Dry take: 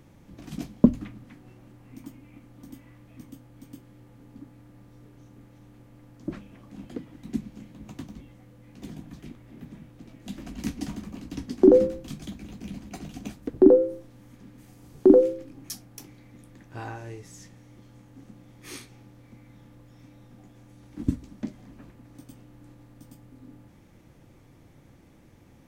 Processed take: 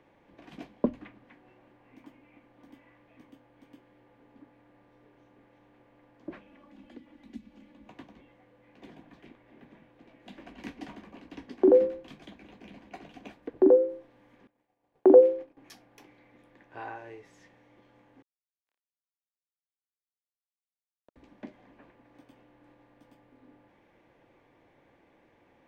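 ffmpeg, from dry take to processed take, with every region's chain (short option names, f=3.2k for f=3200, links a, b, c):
-filter_complex "[0:a]asettb=1/sr,asplit=3[a][b][c];[a]atrim=end=6.474[d];[b]atrim=start=6.47:end=7.89,asetpts=PTS-STARTPTS,afade=t=in:d=0.004:c=qsin,afade=t=out:st=1.416:d=0.004:c=qsin,equalizer=f=230:t=o:w=0.7:g=5,aecho=1:1:3.5:0.59,atrim=end_sample=62622,acrossover=split=180|3000[e][f][g];[f]acompressor=threshold=-49dB:ratio=2:attack=3.2:release=140:knee=2.83:detection=peak[h];[e][h][g]amix=inputs=3:normalize=0[i];[c]atrim=start=7.886[j];[d][i]acrossfade=d=0.004:c1=hsin:c2=qsin[k];[k][j]acrossfade=d=0.004:c1=qsin:c2=hsin,asettb=1/sr,asplit=3[l][m][n];[l]atrim=end=14.474[o];[m]atrim=start=14.47:end=15.57,asetpts=PTS-STARTPTS,afade=t=in:d=0.004:c=qsin,afade=t=out:st=1.096:d=0.004:c=qsin,equalizer=f=700:t=o:w=1.1:g=7.5,agate=range=-33dB:threshold=-37dB:ratio=3:release=100:detection=peak[p];[n]atrim=start=15.566[q];[o][p]acrossfade=d=0.004:c1=hsin:c2=qsin[r];[r][q]acrossfade=d=0.004:c1=qsin:c2=hsin,asettb=1/sr,asplit=3[s][t][u];[s]atrim=end=18.224[v];[t]atrim=start=18.22:end=21.16,asetpts=PTS-STARTPTS,afade=t=in:d=0.004:c=qsin,afade=t=out:st=2.936:d=0.004:c=qsin,acompressor=threshold=-41dB:ratio=6:attack=3.2:release=140:knee=1:detection=peak,acrusher=bits=4:mix=0:aa=0.5[w];[u]atrim=start=21.156[x];[v][w]acrossfade=d=0.004:c1=hsin:c2=qsin[y];[y][x]acrossfade=d=0.004:c1=qsin:c2=hsin,acrossover=split=360 3200:gain=0.126 1 0.0794[z][aa][ab];[z][aa][ab]amix=inputs=3:normalize=0,bandreject=f=1.3k:w=8.2"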